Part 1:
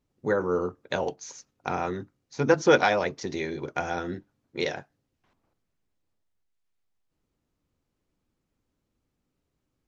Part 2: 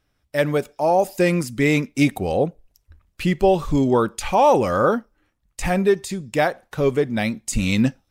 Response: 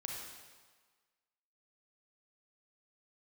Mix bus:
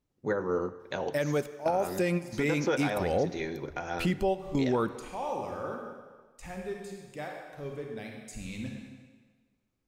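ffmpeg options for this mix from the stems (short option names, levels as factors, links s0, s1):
-filter_complex "[0:a]volume=0.562,asplit=3[s0][s1][s2];[s1]volume=0.299[s3];[1:a]adelay=800,volume=0.596,asplit=2[s4][s5];[s5]volume=0.2[s6];[s2]apad=whole_len=392716[s7];[s4][s7]sidechaingate=range=0.0224:threshold=0.00112:ratio=16:detection=peak[s8];[2:a]atrim=start_sample=2205[s9];[s3][s6]amix=inputs=2:normalize=0[s10];[s10][s9]afir=irnorm=-1:irlink=0[s11];[s0][s8][s11]amix=inputs=3:normalize=0,alimiter=limit=0.112:level=0:latency=1:release=180"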